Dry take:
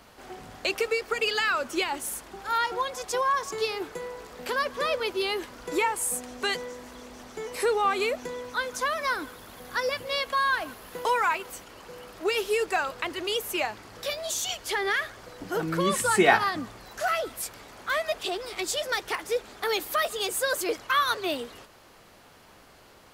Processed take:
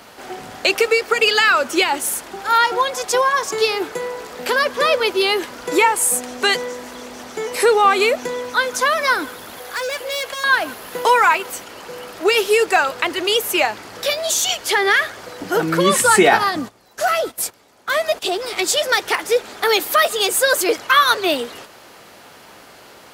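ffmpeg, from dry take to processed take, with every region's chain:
-filter_complex "[0:a]asettb=1/sr,asplit=3[a][b][c];[a]atrim=end=9.594[d];[b]atrim=start=9.59:end=10.44,asetpts=PTS-STARTPTS,afade=t=in:d=0.004:c=qsin,afade=t=out:st=0.846:d=0.004:c=qsin,highpass=f=360:w=0.5412,highpass=f=360:w=1.3066,volume=33dB,asoftclip=hard,volume=-33dB,aeval=exprs='val(0)+0.001*(sin(2*PI*60*n/s)+sin(2*PI*2*60*n/s)/2+sin(2*PI*3*60*n/s)/3+sin(2*PI*4*60*n/s)/4+sin(2*PI*5*60*n/s)/5)':c=same[e];[c]atrim=start=10.436[f];[d][e]acrossfade=d=0.004:c1=hsin:c2=qsin[g];[g][f]acrossfade=d=0.004:c1=qsin:c2=hsin,asettb=1/sr,asplit=3[h][i][j];[h]atrim=end=16.234[k];[i]atrim=start=16.23:end=18.42,asetpts=PTS-STARTPTS,afade=t=in:d=0.004:c=qsin,afade=t=out:st=2.186:d=0.004:c=qsin,agate=range=-15dB:threshold=-42dB:ratio=16:release=100:detection=peak,equalizer=f=1.9k:w=0.63:g=-4.5[l];[j]atrim=start=18.416[m];[k][l]acrossfade=d=0.004:c1=hsin:c2=qsin[n];[n][m]acrossfade=d=0.004:c1=qsin:c2=hsin,highpass=f=220:p=1,bandreject=f=1.1k:w=22,alimiter=level_in=12.5dB:limit=-1dB:release=50:level=0:latency=1,volume=-1dB"

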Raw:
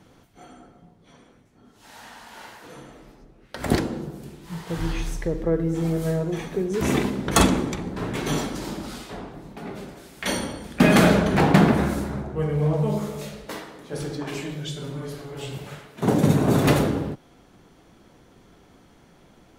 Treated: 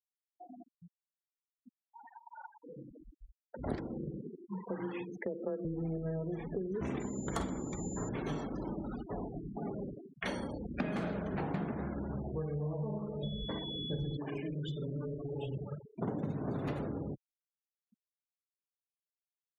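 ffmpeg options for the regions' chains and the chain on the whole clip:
-filter_complex "[0:a]asettb=1/sr,asplit=3[a][b][c];[a]atrim=end=2.544[d];[b]atrim=start=2.54:end=3.67,asetpts=PTS-STARTPTS,afade=t=in:d=0.004:c=qsin,afade=t=out:st=1.126:d=0.004:c=qsin,highshelf=f=2k:g=-6.5,acompressor=threshold=-41dB:ratio=2:attack=3.2:release=140:knee=1:detection=peak[e];[c]atrim=start=3.666[f];[d][e]acrossfade=d=0.004:c1=hsin:c2=qsin[g];[g][f]acrossfade=d=0.004:c1=qsin:c2=hsin,asettb=1/sr,asplit=3[h][i][j];[h]atrim=end=4.214[k];[i]atrim=start=4.21:end=5.65,asetpts=PTS-STARTPTS,afade=t=in:d=0.004:c=qsin,afade=t=out:st=1.436:d=0.004:c=qsin,highpass=220,lowpass=6.4k,afreqshift=20[l];[j]atrim=start=5.646[m];[k][l]acrossfade=d=0.004:c1=hsin:c2=qsin[n];[n][m]acrossfade=d=0.004:c1=qsin:c2=hsin,asettb=1/sr,asplit=3[o][p][q];[o]atrim=end=7.004[r];[p]atrim=start=7:end=8.09,asetpts=PTS-STARTPTS,afade=t=in:d=0.004:c=qsin,afade=t=out:st=1.086:d=0.004:c=qsin,aeval=exprs='val(0)+0.0447*sin(2*PI*7100*n/s)':c=same,bandreject=f=2.6k:w=9.2[s];[q]atrim=start=8.086[t];[r][s]acrossfade=d=0.004:c1=hsin:c2=qsin[u];[u][t]acrossfade=d=0.004:c1=qsin:c2=hsin,asettb=1/sr,asplit=3[v][w][x];[v]atrim=end=13.234[y];[w]atrim=start=13.23:end=14.17,asetpts=PTS-STARTPTS,afade=t=in:d=0.004:c=qsin,afade=t=out:st=0.936:d=0.004:c=qsin,bass=f=250:g=12,treble=f=4k:g=-2,bandreject=f=1.3k:w=13,aeval=exprs='val(0)+0.0282*sin(2*PI*3400*n/s)':c=same[z];[x]atrim=start=14.166[aa];[y][z]acrossfade=d=0.004:c1=hsin:c2=qsin[ab];[ab][aa]acrossfade=d=0.004:c1=qsin:c2=hsin,afftfilt=real='re*gte(hypot(re,im),0.0282)':imag='im*gte(hypot(re,im),0.0282)':win_size=1024:overlap=0.75,lowpass=f=1.7k:p=1,acompressor=threshold=-35dB:ratio=6"

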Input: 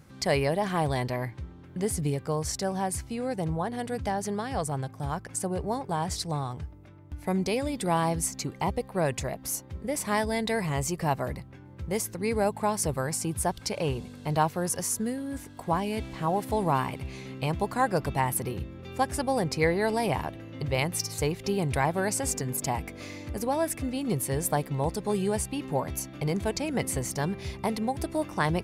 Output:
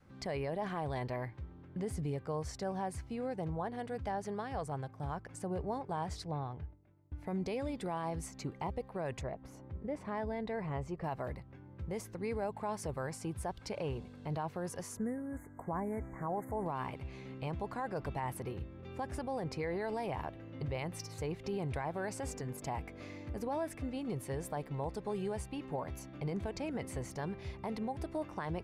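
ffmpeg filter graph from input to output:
-filter_complex "[0:a]asettb=1/sr,asplit=3[a][b][c];[a]atrim=end=6.254[d];[b]atrim=start=6.25:end=7.13,asetpts=PTS-STARTPTS,afade=t=in:d=0.004:c=qsin,afade=t=out:st=0.876:d=0.004:c=qsin,agate=range=-33dB:threshold=-43dB:ratio=3:release=100:detection=peak,lowpass=3.4k,equalizer=f=1.2k:t=o:w=0.37:g=-4.5[e];[c]atrim=start=7.126[f];[d][e]acrossfade=d=0.004:c1=hsin:c2=qsin[g];[g][f]acrossfade=d=0.004:c1=qsin:c2=hsin,asettb=1/sr,asplit=3[h][i][j];[h]atrim=end=9.214[k];[i]atrim=start=9.21:end=11.04,asetpts=PTS-STARTPTS,afade=t=in:d=0.004:c=qsin,afade=t=out:st=1.826:d=0.004:c=qsin,lowpass=f=1.4k:p=1,acompressor=mode=upward:threshold=-40dB:ratio=2.5:attack=3.2:release=140:knee=2.83:detection=peak[l];[j]atrim=start=11.036[m];[k][l]acrossfade=d=0.004:c1=hsin:c2=qsin[n];[n][m]acrossfade=d=0.004:c1=qsin:c2=hsin,asettb=1/sr,asplit=3[o][p][q];[o]atrim=end=14.974[r];[p]atrim=start=14.97:end=16.66,asetpts=PTS-STARTPTS,afade=t=in:d=0.004:c=qsin,afade=t=out:st=1.686:d=0.004:c=qsin,asuperstop=centerf=3800:order=20:qfactor=0.89,equalizer=f=13k:t=o:w=0.45:g=8.5[s];[q]atrim=start=16.656[t];[r][s]acrossfade=d=0.004:c1=hsin:c2=qsin[u];[u][t]acrossfade=d=0.004:c1=qsin:c2=hsin,lowpass=f=1.8k:p=1,adynamicequalizer=threshold=0.00794:dfrequency=190:dqfactor=0.75:tfrequency=190:tqfactor=0.75:attack=5:release=100:ratio=0.375:range=2.5:mode=cutabove:tftype=bell,alimiter=limit=-23.5dB:level=0:latency=1:release=31,volume=-5dB"

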